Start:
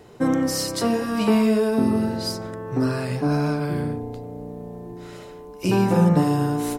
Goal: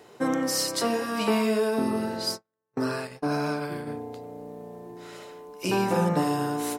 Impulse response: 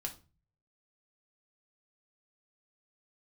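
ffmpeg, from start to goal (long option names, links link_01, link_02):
-filter_complex "[0:a]highpass=frequency=480:poles=1,asplit=3[link_01][link_02][link_03];[link_01]afade=type=out:start_time=2.25:duration=0.02[link_04];[link_02]agate=range=-48dB:threshold=-30dB:ratio=16:detection=peak,afade=type=in:start_time=2.25:duration=0.02,afade=type=out:start_time=3.86:duration=0.02[link_05];[link_03]afade=type=in:start_time=3.86:duration=0.02[link_06];[link_04][link_05][link_06]amix=inputs=3:normalize=0"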